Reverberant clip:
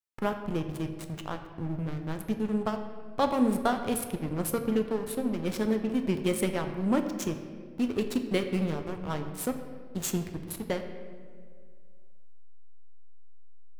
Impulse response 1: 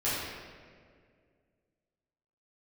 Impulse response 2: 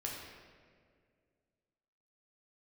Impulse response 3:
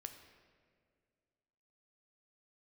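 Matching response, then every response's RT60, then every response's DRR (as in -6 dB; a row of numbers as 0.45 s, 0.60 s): 3; 2.0 s, 2.0 s, 2.1 s; -12.0 dB, -3.0 dB, 6.0 dB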